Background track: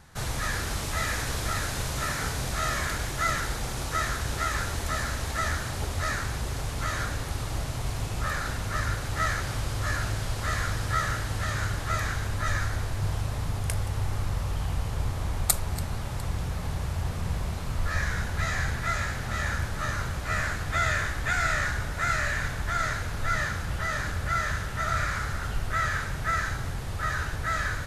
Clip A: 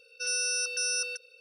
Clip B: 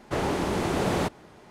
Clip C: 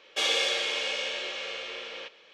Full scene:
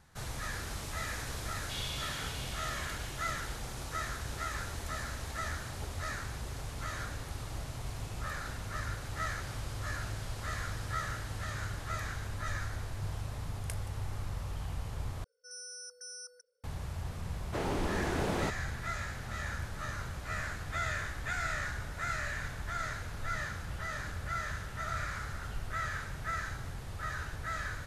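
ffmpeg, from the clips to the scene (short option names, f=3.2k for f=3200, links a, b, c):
-filter_complex "[0:a]volume=-9dB[a];[3:a]bandpass=f=4.1k:t=q:w=1.6:csg=0[b];[1:a]asuperstop=centerf=3200:order=20:qfactor=1.2[c];[a]asplit=2[d][e];[d]atrim=end=15.244[f];[c]atrim=end=1.4,asetpts=PTS-STARTPTS,volume=-15.5dB[g];[e]atrim=start=16.636[h];[b]atrim=end=2.33,asetpts=PTS-STARTPTS,volume=-11.5dB,afade=t=in:d=0.004:c=hsin,afade=t=out:st=2.326:d=0.004:c=hsin,adelay=1530[i];[2:a]atrim=end=1.5,asetpts=PTS-STARTPTS,volume=-7.5dB,afade=t=in:d=0.004:c=hsin,afade=t=out:st=1.496:d=0.004:c=hsin,adelay=17420[j];[f][g]acrossfade=d=0.004:c1=hsin:c2=hsin[k];[k][h]acrossfade=d=0.004:c1=hsin:c2=hsin[l];[l][i][j]amix=inputs=3:normalize=0"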